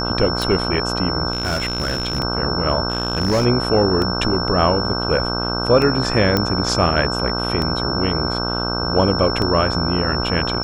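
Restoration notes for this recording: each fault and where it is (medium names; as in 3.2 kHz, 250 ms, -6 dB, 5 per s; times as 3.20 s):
buzz 60 Hz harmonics 26 -24 dBFS
tick 33 1/3 rpm
whine 5.4 kHz -24 dBFS
1.32–2.20 s: clipped -17 dBFS
2.90–3.46 s: clipped -13 dBFS
6.37 s: pop -4 dBFS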